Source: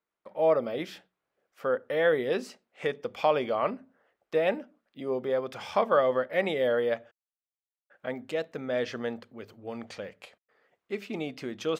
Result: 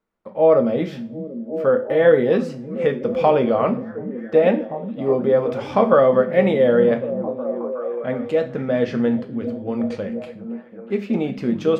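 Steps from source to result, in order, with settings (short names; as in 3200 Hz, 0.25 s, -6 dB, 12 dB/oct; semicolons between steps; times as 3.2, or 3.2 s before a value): tilt -3 dB/oct; delay with a stepping band-pass 0.368 s, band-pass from 160 Hz, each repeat 0.7 oct, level -5 dB; two-slope reverb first 0.33 s, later 1.6 s, from -26 dB, DRR 5.5 dB; gain +6 dB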